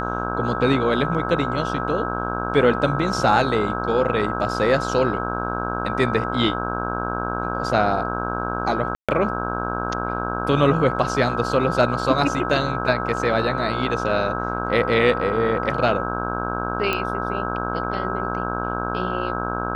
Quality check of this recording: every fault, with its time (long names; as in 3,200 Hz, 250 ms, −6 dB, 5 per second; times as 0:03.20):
mains buzz 60 Hz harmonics 27 −27 dBFS
whistle 1,300 Hz −28 dBFS
0:08.95–0:09.09: drop-out 136 ms
0:16.93: click −9 dBFS